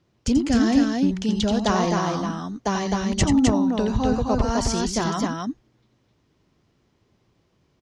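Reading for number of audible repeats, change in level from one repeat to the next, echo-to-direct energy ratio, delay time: 2, no regular repeats, -2.0 dB, 87 ms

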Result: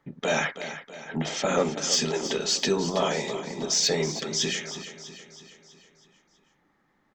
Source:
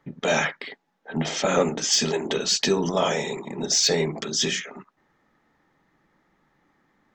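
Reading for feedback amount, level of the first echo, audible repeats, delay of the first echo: 53%, -12.0 dB, 5, 324 ms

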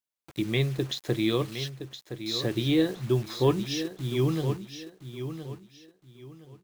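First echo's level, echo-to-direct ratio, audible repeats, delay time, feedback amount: -10.0 dB, -9.5 dB, 3, 1017 ms, 27%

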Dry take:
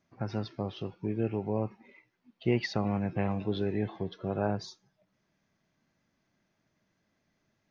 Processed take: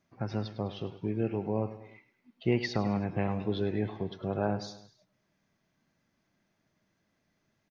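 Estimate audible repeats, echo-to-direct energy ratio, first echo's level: 3, -12.5 dB, -14.0 dB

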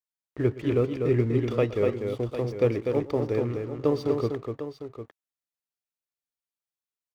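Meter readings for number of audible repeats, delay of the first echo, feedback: 3, 119 ms, no regular repeats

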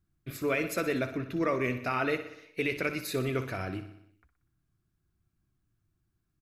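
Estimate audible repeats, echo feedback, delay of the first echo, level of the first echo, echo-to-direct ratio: 6, 60%, 61 ms, -12.0 dB, -10.0 dB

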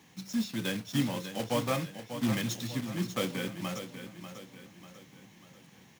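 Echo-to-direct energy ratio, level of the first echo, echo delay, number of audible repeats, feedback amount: -9.0 dB, -10.0 dB, 593 ms, 4, 46%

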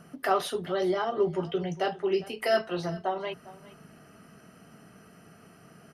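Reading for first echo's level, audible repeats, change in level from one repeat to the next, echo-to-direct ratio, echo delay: -19.0 dB, 1, no regular repeats, -19.0 dB, 405 ms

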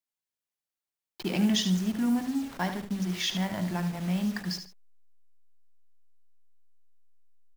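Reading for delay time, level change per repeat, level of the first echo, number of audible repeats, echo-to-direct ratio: 74 ms, -11.5 dB, -9.0 dB, 2, -8.5 dB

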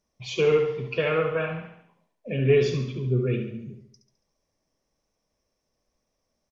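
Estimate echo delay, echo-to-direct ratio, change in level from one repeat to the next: 70 ms, -6.5 dB, -6.0 dB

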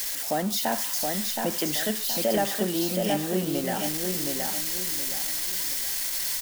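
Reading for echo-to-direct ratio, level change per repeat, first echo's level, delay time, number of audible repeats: -3.5 dB, -9.0 dB, -4.0 dB, 721 ms, 4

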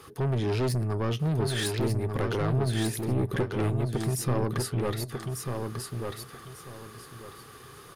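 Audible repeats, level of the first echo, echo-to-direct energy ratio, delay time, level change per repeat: 3, -4.5 dB, -4.0 dB, 1194 ms, -12.5 dB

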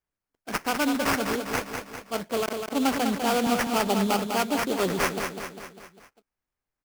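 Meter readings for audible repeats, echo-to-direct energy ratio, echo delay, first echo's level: 5, -4.5 dB, 200 ms, -6.0 dB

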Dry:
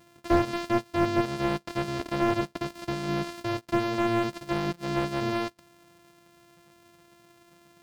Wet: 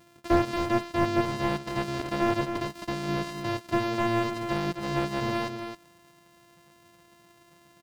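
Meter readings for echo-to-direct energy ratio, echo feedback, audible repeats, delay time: -8.0 dB, no regular repeats, 1, 266 ms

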